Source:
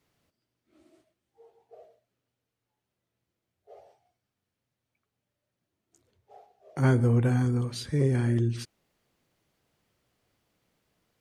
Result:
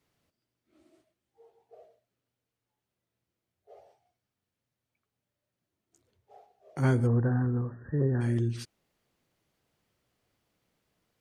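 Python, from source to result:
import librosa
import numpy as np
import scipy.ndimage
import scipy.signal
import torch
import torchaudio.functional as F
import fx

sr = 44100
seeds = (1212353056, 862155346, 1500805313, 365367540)

y = fx.brickwall_lowpass(x, sr, high_hz=1900.0, at=(7.06, 8.2), fade=0.02)
y = y * librosa.db_to_amplitude(-2.5)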